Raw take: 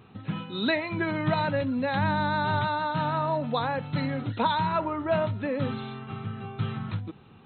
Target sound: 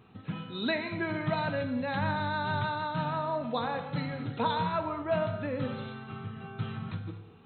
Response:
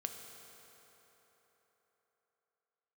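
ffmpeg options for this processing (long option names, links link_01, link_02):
-filter_complex "[1:a]atrim=start_sample=2205,afade=type=out:start_time=0.29:duration=0.01,atrim=end_sample=13230[link_01];[0:a][link_01]afir=irnorm=-1:irlink=0,volume=-2.5dB"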